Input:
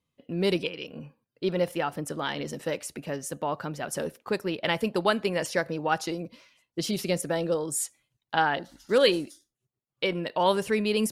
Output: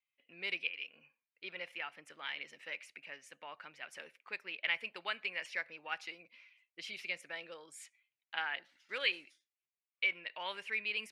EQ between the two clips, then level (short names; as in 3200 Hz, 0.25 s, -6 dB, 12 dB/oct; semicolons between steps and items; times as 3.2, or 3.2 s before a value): band-pass 2300 Hz, Q 4.3; +1.5 dB